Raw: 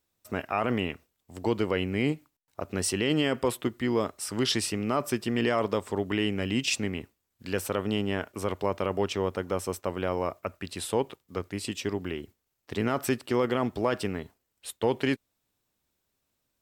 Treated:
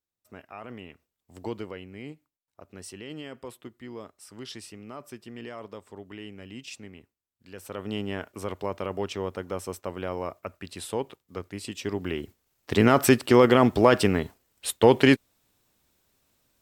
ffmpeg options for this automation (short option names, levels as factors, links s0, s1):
-af "volume=7.94,afade=t=in:st=0.87:d=0.5:silence=0.354813,afade=t=out:st=1.37:d=0.44:silence=0.354813,afade=t=in:st=7.56:d=0.41:silence=0.281838,afade=t=in:st=11.75:d=1.06:silence=0.251189"